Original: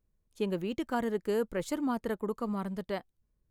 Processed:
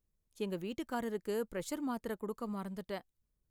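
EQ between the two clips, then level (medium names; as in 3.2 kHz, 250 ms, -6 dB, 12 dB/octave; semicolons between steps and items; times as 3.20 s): treble shelf 4.5 kHz +6.5 dB; -6.0 dB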